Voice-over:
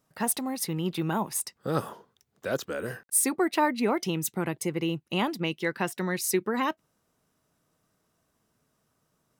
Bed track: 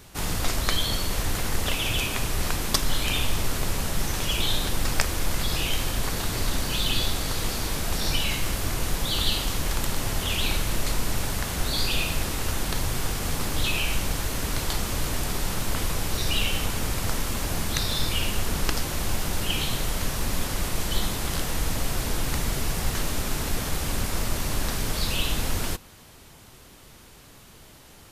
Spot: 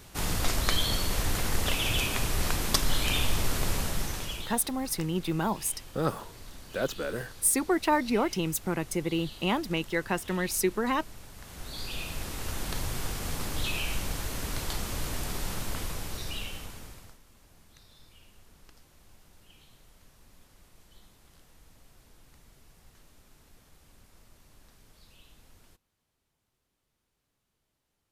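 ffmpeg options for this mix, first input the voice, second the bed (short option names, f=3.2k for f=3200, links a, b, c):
-filter_complex "[0:a]adelay=4300,volume=-0.5dB[a];[1:a]volume=12.5dB,afade=t=out:st=3.74:d=0.82:silence=0.11885,afade=t=in:st=11.33:d=1.41:silence=0.188365,afade=t=out:st=15.52:d=1.66:silence=0.0562341[b];[a][b]amix=inputs=2:normalize=0"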